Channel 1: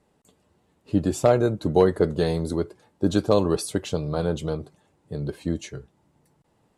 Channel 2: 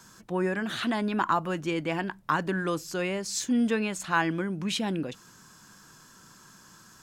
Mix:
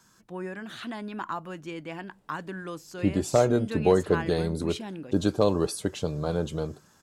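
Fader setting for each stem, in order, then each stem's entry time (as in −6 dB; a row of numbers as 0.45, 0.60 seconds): −3.0, −8.0 decibels; 2.10, 0.00 seconds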